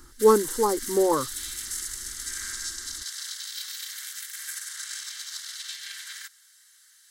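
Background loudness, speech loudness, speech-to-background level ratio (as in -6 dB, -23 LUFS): -33.0 LUFS, -23.0 LUFS, 10.0 dB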